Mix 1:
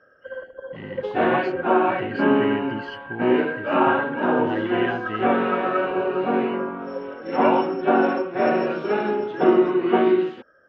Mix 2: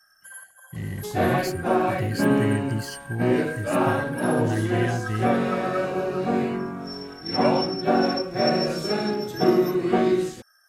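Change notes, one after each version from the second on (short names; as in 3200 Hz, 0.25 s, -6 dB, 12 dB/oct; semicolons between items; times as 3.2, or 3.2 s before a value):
first sound: add steep high-pass 730 Hz 72 dB/oct; master: remove speaker cabinet 230–3100 Hz, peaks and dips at 260 Hz +4 dB, 400 Hz +5 dB, 930 Hz +8 dB, 1400 Hz +6 dB, 2900 Hz +7 dB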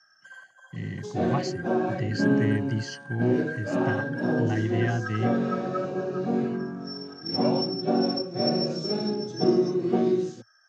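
second sound: add bell 1900 Hz -14 dB 2.4 oct; master: add Chebyshev band-pass 110–6400 Hz, order 4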